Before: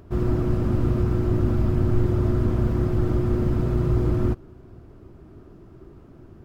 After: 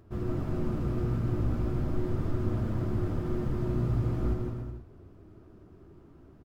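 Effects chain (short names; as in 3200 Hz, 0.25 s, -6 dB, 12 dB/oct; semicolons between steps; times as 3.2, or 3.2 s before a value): flange 0.37 Hz, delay 8.8 ms, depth 9.7 ms, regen +41%; bouncing-ball echo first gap 0.16 s, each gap 0.75×, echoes 5; gain -5 dB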